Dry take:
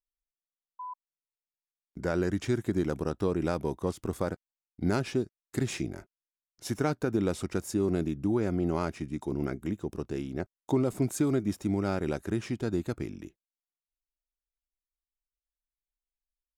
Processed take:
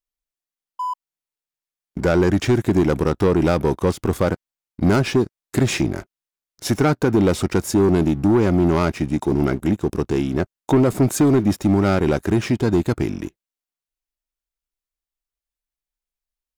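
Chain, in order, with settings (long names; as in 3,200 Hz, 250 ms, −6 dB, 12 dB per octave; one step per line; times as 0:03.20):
leveller curve on the samples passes 2
dynamic equaliser 8,800 Hz, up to −4 dB, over −50 dBFS, Q 0.95
level +7 dB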